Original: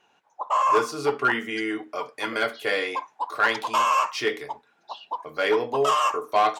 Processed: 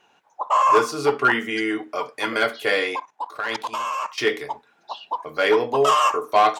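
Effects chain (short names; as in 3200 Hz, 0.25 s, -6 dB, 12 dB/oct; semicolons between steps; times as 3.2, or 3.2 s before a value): 2.96–4.18 level quantiser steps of 15 dB; gain +4 dB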